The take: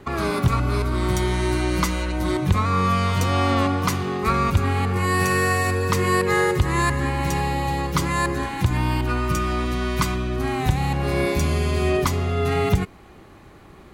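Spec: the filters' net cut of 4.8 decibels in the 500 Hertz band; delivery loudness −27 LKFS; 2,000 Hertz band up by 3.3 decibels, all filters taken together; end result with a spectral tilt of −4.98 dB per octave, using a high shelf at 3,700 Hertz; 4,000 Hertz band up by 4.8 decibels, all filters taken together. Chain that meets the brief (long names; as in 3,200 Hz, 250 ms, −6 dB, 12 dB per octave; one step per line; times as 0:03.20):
parametric band 500 Hz −7 dB
parametric band 2,000 Hz +3.5 dB
high-shelf EQ 3,700 Hz −4 dB
parametric band 4,000 Hz +7.5 dB
level −5 dB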